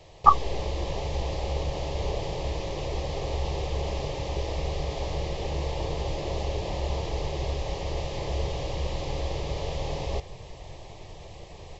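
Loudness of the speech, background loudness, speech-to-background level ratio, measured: -36.0 LUFS, -32.0 LUFS, -4.0 dB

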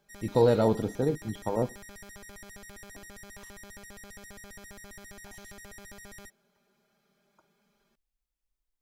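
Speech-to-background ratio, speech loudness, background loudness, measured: 20.0 dB, -27.5 LUFS, -47.5 LUFS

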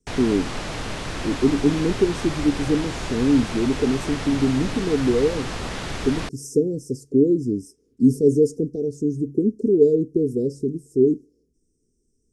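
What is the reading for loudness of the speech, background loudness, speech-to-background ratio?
-22.0 LUFS, -30.5 LUFS, 8.5 dB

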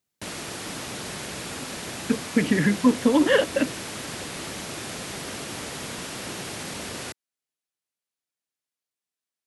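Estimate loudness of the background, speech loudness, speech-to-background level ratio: -33.5 LUFS, -22.5 LUFS, 11.0 dB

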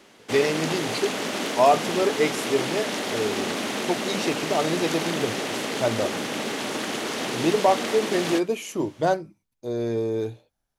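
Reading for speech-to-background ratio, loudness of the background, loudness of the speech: 2.0 dB, -28.0 LUFS, -26.0 LUFS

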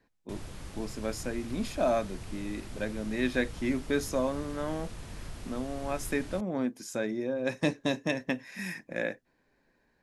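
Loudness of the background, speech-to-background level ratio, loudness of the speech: -45.0 LUFS, 12.0 dB, -33.0 LUFS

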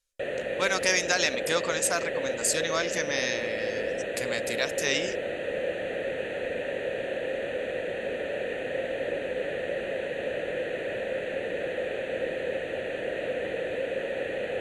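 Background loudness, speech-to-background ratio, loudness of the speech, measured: -31.5 LUFS, 3.0 dB, -28.5 LUFS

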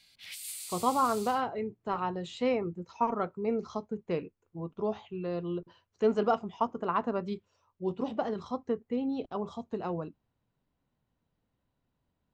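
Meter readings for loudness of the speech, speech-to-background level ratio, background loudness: -33.0 LUFS, 8.0 dB, -41.0 LUFS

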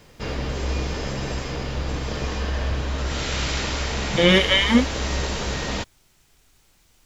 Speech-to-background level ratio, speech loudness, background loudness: 8.5 dB, -18.5 LUFS, -27.0 LUFS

